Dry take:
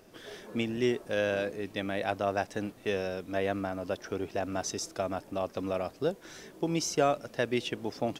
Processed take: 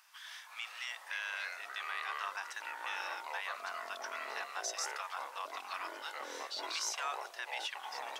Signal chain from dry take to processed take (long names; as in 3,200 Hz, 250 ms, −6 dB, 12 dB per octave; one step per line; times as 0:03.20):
elliptic high-pass filter 960 Hz, stop band 60 dB
brickwall limiter −29 dBFS, peak gain reduction 8.5 dB
delay with pitch and tempo change per echo 318 ms, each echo −5 semitones, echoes 3
level +1 dB